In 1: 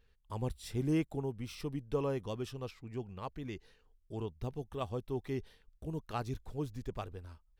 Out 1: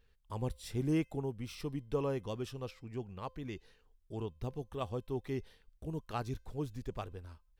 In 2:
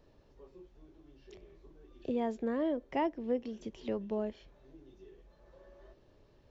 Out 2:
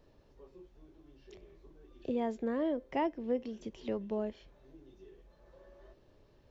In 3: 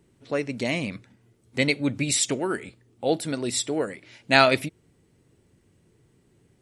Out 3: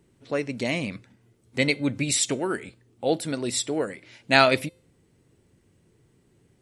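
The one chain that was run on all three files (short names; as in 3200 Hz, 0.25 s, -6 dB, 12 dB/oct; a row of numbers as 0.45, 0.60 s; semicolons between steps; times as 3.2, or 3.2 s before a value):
resonator 520 Hz, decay 0.46 s, mix 40%; gain +4 dB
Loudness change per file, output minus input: -0.5, -0.5, -0.5 LU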